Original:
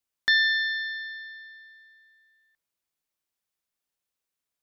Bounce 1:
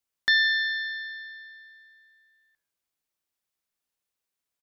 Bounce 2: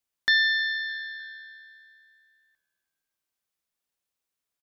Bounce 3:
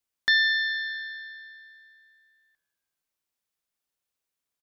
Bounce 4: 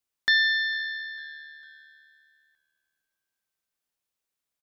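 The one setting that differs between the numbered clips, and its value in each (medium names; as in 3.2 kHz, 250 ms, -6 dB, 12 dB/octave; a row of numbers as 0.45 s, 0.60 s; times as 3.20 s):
frequency-shifting echo, time: 86 ms, 306 ms, 198 ms, 451 ms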